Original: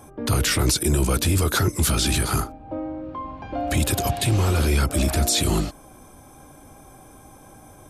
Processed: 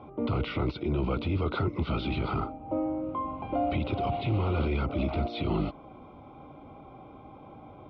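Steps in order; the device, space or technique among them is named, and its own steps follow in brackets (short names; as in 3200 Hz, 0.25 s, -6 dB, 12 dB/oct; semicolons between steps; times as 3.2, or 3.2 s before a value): PA system with an anti-feedback notch (HPF 120 Hz 6 dB/oct; Butterworth band-stop 1700 Hz, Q 3; limiter -20 dBFS, peak gain reduction 9.5 dB); inverse Chebyshev low-pass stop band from 7300 Hz, stop band 40 dB; air absorption 310 m; gain +1.5 dB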